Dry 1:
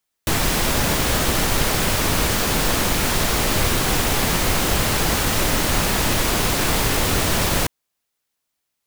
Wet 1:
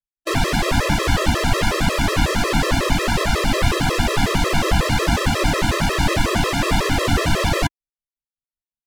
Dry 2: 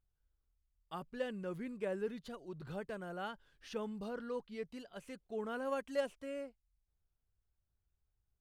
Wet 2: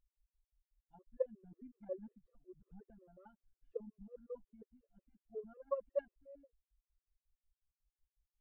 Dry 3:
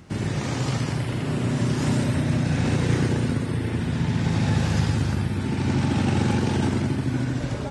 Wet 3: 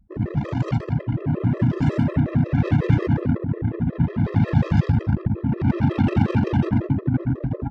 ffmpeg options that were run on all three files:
ffmpeg -i in.wav -af "anlmdn=158,aemphasis=mode=reproduction:type=50fm,afftfilt=real='re*gt(sin(2*PI*5.5*pts/sr)*(1-2*mod(floor(b*sr/1024/340),2)),0)':imag='im*gt(sin(2*PI*5.5*pts/sr)*(1-2*mod(floor(b*sr/1024/340),2)),0)':win_size=1024:overlap=0.75,volume=5.5dB" out.wav

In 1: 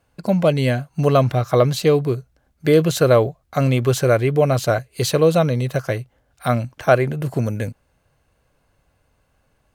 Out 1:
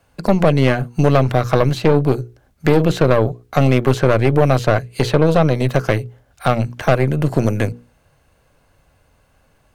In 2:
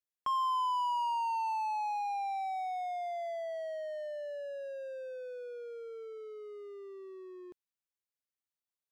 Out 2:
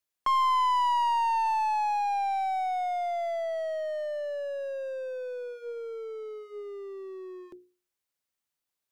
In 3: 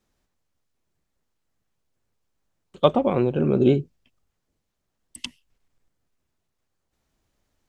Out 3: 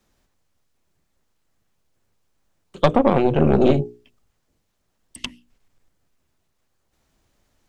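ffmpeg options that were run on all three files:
ffmpeg -i in.wav -filter_complex "[0:a]acrossover=split=210|3000|7000[link_01][link_02][link_03][link_04];[link_01]acompressor=threshold=-23dB:ratio=4[link_05];[link_02]acompressor=threshold=-19dB:ratio=4[link_06];[link_03]acompressor=threshold=-46dB:ratio=4[link_07];[link_04]acompressor=threshold=-55dB:ratio=4[link_08];[link_05][link_06][link_07][link_08]amix=inputs=4:normalize=0,bandreject=frequency=60:width_type=h:width=6,bandreject=frequency=120:width_type=h:width=6,bandreject=frequency=180:width_type=h:width=6,bandreject=frequency=240:width_type=h:width=6,bandreject=frequency=300:width_type=h:width=6,bandreject=frequency=360:width_type=h:width=6,bandreject=frequency=420:width_type=h:width=6,bandreject=frequency=480:width_type=h:width=6,aeval=exprs='0.473*(cos(1*acos(clip(val(0)/0.473,-1,1)))-cos(1*PI/2))+0.106*(cos(4*acos(clip(val(0)/0.473,-1,1)))-cos(4*PI/2))+0.0473*(cos(5*acos(clip(val(0)/0.473,-1,1)))-cos(5*PI/2))+0.0211*(cos(8*acos(clip(val(0)/0.473,-1,1)))-cos(8*PI/2))':channel_layout=same,volume=3.5dB" out.wav

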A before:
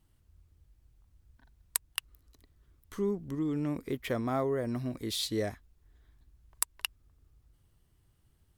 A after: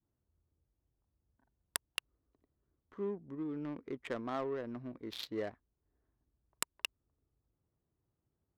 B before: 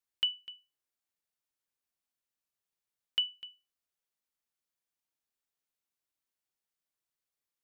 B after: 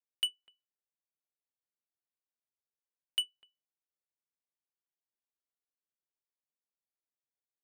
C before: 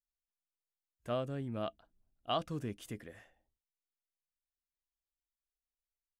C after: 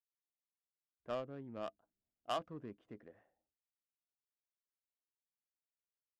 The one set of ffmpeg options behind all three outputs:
ffmpeg -i in.wav -af "highpass=frequency=460:poles=1,adynamicequalizer=threshold=0.00282:dfrequency=670:dqfactor=1.4:tfrequency=670:tqfactor=1.4:attack=5:release=100:ratio=0.375:range=2.5:mode=cutabove:tftype=bell,adynamicsmooth=sensitivity=4.5:basefreq=770,volume=-1.5dB" out.wav

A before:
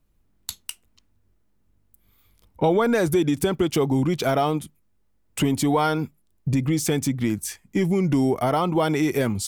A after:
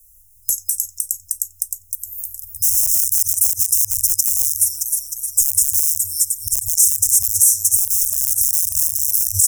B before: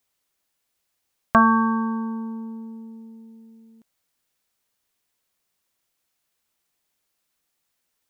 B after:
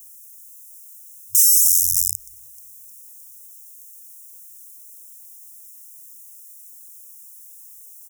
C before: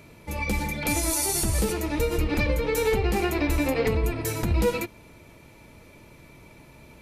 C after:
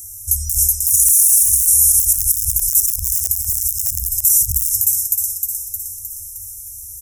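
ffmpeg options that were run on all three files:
ffmpeg -i in.wav -filter_complex "[0:a]adynamicequalizer=threshold=0.0158:dfrequency=130:dqfactor=1.8:tfrequency=130:tqfactor=1.8:attack=5:release=100:ratio=0.375:range=1.5:mode=cutabove:tftype=bell,aecho=1:1:4.9:0.31,asplit=2[link_01][link_02];[link_02]asplit=7[link_03][link_04][link_05][link_06][link_07][link_08][link_09];[link_03]adelay=309,afreqshift=88,volume=-9dB[link_10];[link_04]adelay=618,afreqshift=176,volume=-13.9dB[link_11];[link_05]adelay=927,afreqshift=264,volume=-18.8dB[link_12];[link_06]adelay=1236,afreqshift=352,volume=-23.6dB[link_13];[link_07]adelay=1545,afreqshift=440,volume=-28.5dB[link_14];[link_08]adelay=1854,afreqshift=528,volume=-33.4dB[link_15];[link_09]adelay=2163,afreqshift=616,volume=-38.3dB[link_16];[link_10][link_11][link_12][link_13][link_14][link_15][link_16]amix=inputs=7:normalize=0[link_17];[link_01][link_17]amix=inputs=2:normalize=0,asoftclip=type=tanh:threshold=-14.5dB,asplit=2[link_18][link_19];[link_19]adelay=90,highpass=300,lowpass=3400,asoftclip=type=hard:threshold=-23dB,volume=-12dB[link_20];[link_18][link_20]amix=inputs=2:normalize=0,aeval=exprs='(mod(7.5*val(0)+1,2)-1)/7.5':channel_layout=same,equalizer=frequency=125:width_type=o:width=1:gain=10,equalizer=frequency=250:width_type=o:width=1:gain=12,equalizer=frequency=500:width_type=o:width=1:gain=12,equalizer=frequency=1000:width_type=o:width=1:gain=12,equalizer=frequency=2000:width_type=o:width=1:gain=10,aexciter=amount=15.4:drive=6.1:freq=5900,afftfilt=real='re*(1-between(b*sr/4096,100,5100))':imag='im*(1-between(b*sr/4096,100,5100))':win_size=4096:overlap=0.75,alimiter=level_in=6.5dB:limit=-1dB:release=50:level=0:latency=1,volume=-1dB" out.wav

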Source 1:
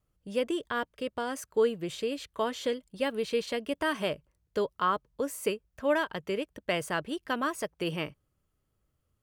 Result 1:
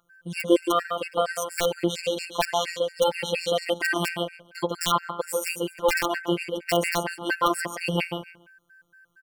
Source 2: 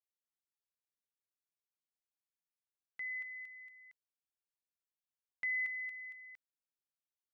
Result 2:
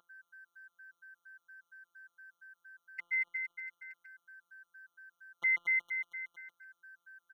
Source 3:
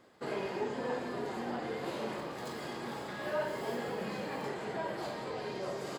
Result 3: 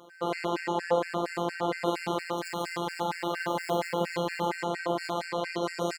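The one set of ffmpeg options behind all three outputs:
ffmpeg -i in.wav -filter_complex "[0:a]equalizer=frequency=910:width_type=o:width=0.47:gain=3,bandreject=frequency=1700:width=12,asplit=2[link_01][link_02];[link_02]aecho=0:1:142|284|426:0.531|0.101|0.0192[link_03];[link_01][link_03]amix=inputs=2:normalize=0,aeval=exprs='val(0)+0.00141*sin(2*PI*1600*n/s)':channel_layout=same,highpass=64,lowshelf=frequency=170:gain=-8.5,bandreject=frequency=105.1:width_type=h:width=4,bandreject=frequency=210.2:width_type=h:width=4,bandreject=frequency=315.3:width_type=h:width=4,bandreject=frequency=420.4:width_type=h:width=4,bandreject=frequency=525.5:width_type=h:width=4,bandreject=frequency=630.6:width_type=h:width=4,bandreject=frequency=735.7:width_type=h:width=4,bandreject=frequency=840.8:width_type=h:width=4,bandreject=frequency=945.9:width_type=h:width=4,bandreject=frequency=1051:width_type=h:width=4,bandreject=frequency=1156.1:width_type=h:width=4,bandreject=frequency=1261.2:width_type=h:width=4,bandreject=frequency=1366.3:width_type=h:width=4,bandreject=frequency=1471.4:width_type=h:width=4,bandreject=frequency=1576.5:width_type=h:width=4,bandreject=frequency=1681.6:width_type=h:width=4,bandreject=frequency=1786.7:width_type=h:width=4,bandreject=frequency=1891.8:width_type=h:width=4,bandreject=frequency=1996.9:width_type=h:width=4,bandreject=frequency=2102:width_type=h:width=4,bandreject=frequency=2207.1:width_type=h:width=4,bandreject=frequency=2312.2:width_type=h:width=4,bandreject=frequency=2417.3:width_type=h:width=4,bandreject=frequency=2522.4:width_type=h:width=4,aeval=exprs='(mod(7.94*val(0)+1,2)-1)/7.94':channel_layout=same,afftfilt=real='hypot(re,im)*cos(PI*b)':imag='0':win_size=1024:overlap=0.75,alimiter=level_in=14dB:limit=-1dB:release=50:level=0:latency=1,afftfilt=real='re*gt(sin(2*PI*4.3*pts/sr)*(1-2*mod(floor(b*sr/1024/1400),2)),0)':imag='im*gt(sin(2*PI*4.3*pts/sr)*(1-2*mod(floor(b*sr/1024/1400),2)),0)':win_size=1024:overlap=0.75" out.wav

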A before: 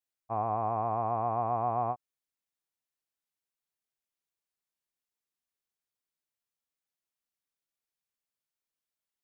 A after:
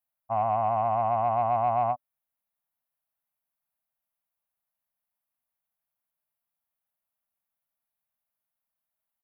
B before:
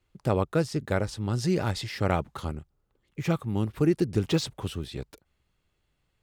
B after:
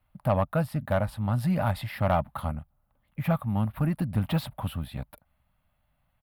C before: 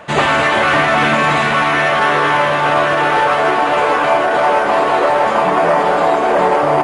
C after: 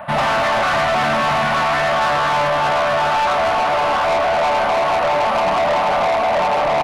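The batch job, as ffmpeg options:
ffmpeg -i in.wav -af "acontrast=41,firequalizer=gain_entry='entry(250,0);entry(380,-23);entry(600,5);entry(1700,-2);entry(4000,-9);entry(6200,-24);entry(11000,4)':delay=0.05:min_phase=1,asoftclip=type=tanh:threshold=-11.5dB,volume=-3dB" out.wav

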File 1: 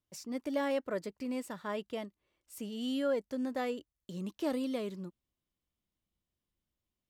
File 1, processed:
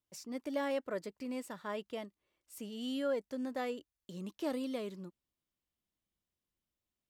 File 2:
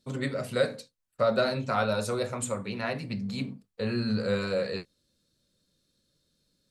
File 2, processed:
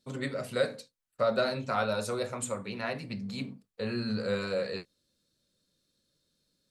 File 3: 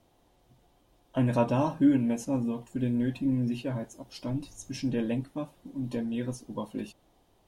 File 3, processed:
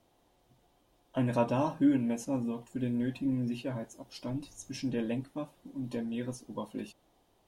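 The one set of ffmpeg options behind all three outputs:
ffmpeg -i in.wav -af "lowshelf=frequency=170:gain=-5,volume=-2dB" out.wav

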